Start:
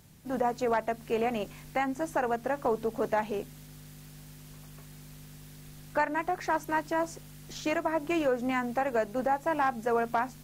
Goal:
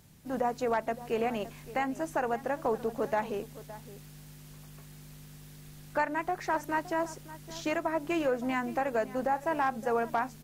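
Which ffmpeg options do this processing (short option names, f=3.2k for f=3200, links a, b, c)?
-filter_complex "[0:a]asplit=2[a][b];[b]adelay=565.6,volume=-16dB,highshelf=f=4k:g=-12.7[c];[a][c]amix=inputs=2:normalize=0,volume=-1.5dB"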